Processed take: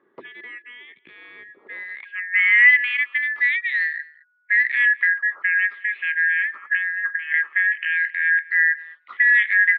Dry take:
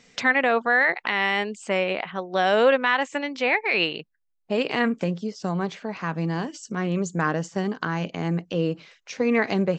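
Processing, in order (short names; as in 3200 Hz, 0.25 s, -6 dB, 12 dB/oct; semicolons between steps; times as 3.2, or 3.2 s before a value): four-band scrambler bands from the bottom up 4123; in parallel at -4 dB: soft clip -20.5 dBFS, distortion -10 dB; 6.72–7.35 on the sum: negative-ratio compressor -25 dBFS, ratio -0.5; band-pass sweep 360 Hz -> 1900 Hz, 1.53–2.37; speaker cabinet 140–2400 Hz, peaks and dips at 380 Hz +6 dB, 710 Hz -5 dB, 1200 Hz +6 dB; echo 0.214 s -23 dB; gain +4 dB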